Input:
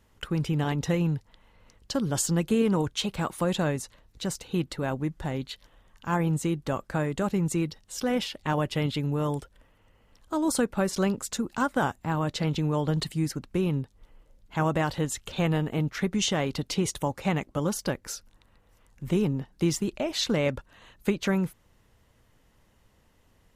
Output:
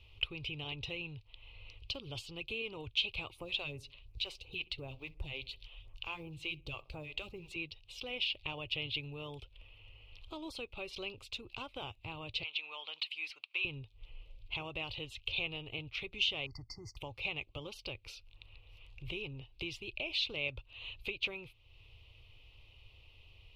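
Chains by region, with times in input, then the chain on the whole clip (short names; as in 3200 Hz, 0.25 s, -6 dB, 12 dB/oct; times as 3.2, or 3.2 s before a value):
3.32–7.56 block floating point 7-bit + phaser stages 2, 2.8 Hz, lowest notch 120–3600 Hz + darkening echo 64 ms, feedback 42%, low-pass 1100 Hz, level -19.5 dB
12.43–13.65 HPF 1300 Hz + overdrive pedal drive 9 dB, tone 1800 Hz, clips at -17.5 dBFS
16.46–16.97 brick-wall FIR band-stop 2100–4400 Hz + fixed phaser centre 2500 Hz, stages 8
whole clip: high shelf 6000 Hz +11.5 dB; compressor 2:1, threshold -45 dBFS; EQ curve 110 Hz 0 dB, 190 Hz -25 dB, 380 Hz -9 dB, 600 Hz -11 dB, 1200 Hz -12 dB, 1700 Hz -26 dB, 2500 Hz +10 dB, 4300 Hz -4 dB, 7000 Hz -29 dB; gain +5.5 dB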